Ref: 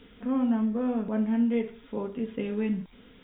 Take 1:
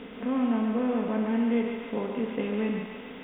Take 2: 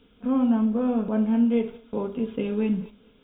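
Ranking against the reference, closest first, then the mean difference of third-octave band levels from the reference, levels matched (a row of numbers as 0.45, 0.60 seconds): 2, 1; 1.5, 5.5 decibels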